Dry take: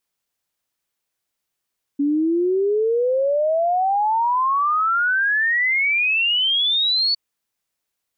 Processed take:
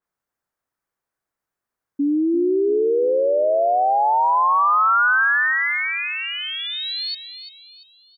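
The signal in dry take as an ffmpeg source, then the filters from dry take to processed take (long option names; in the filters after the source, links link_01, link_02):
-f lavfi -i "aevalsrc='0.158*clip(min(t,5.16-t)/0.01,0,1)*sin(2*PI*280*5.16/log(4500/280)*(exp(log(4500/280)*t/5.16)-1))':duration=5.16:sample_rate=44100"
-filter_complex "[0:a]highshelf=frequency=2100:width_type=q:width=1.5:gain=-9.5,asplit=2[link_01][link_02];[link_02]aecho=0:1:343|686|1029|1372|1715:0.316|0.139|0.0612|0.0269|0.0119[link_03];[link_01][link_03]amix=inputs=2:normalize=0,adynamicequalizer=threshold=0.02:dfrequency=3400:dqfactor=0.7:tfrequency=3400:tqfactor=0.7:attack=5:release=100:ratio=0.375:range=2.5:mode=boostabove:tftype=highshelf"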